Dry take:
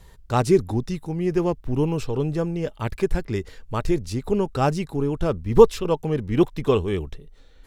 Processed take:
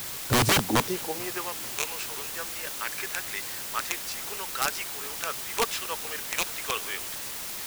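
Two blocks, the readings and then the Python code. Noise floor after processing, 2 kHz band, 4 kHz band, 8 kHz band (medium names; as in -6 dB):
-36 dBFS, +7.0 dB, +9.0 dB, +12.5 dB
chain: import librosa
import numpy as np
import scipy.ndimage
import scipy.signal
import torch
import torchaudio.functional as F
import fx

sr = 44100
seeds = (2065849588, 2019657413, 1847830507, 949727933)

y = fx.rattle_buzz(x, sr, strikes_db=-20.0, level_db=-16.0)
y = fx.peak_eq(y, sr, hz=470.0, db=3.0, octaves=0.77)
y = fx.filter_sweep_highpass(y, sr, from_hz=110.0, to_hz=1600.0, start_s=0.41, end_s=1.49, q=1.7)
y = (np.mod(10.0 ** (15.5 / 20.0) * y + 1.0, 2.0) - 1.0) / 10.0 ** (15.5 / 20.0)
y = fx.quant_dither(y, sr, seeds[0], bits=6, dither='triangular')
y = fx.echo_feedback(y, sr, ms=440, feedback_pct=60, wet_db=-23.0)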